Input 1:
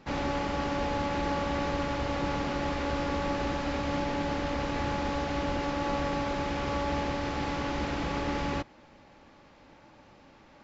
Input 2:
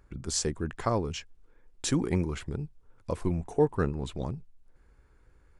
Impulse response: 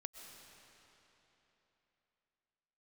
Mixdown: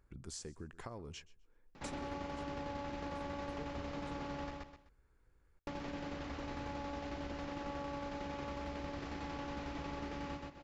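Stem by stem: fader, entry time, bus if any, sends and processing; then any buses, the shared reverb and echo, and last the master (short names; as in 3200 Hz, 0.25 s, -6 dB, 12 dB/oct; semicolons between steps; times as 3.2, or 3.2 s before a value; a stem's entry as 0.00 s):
-1.0 dB, 1.75 s, muted 4.51–5.67, no send, echo send -4.5 dB, tremolo saw down 11 Hz, depth 60%; hard clip -23.5 dBFS, distortion -29 dB
-10.0 dB, 0.00 s, no send, echo send -22.5 dB, compressor, threshold -28 dBFS, peak gain reduction 10 dB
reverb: off
echo: feedback echo 0.127 s, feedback 20%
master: compressor 2.5:1, threshold -45 dBFS, peak gain reduction 12 dB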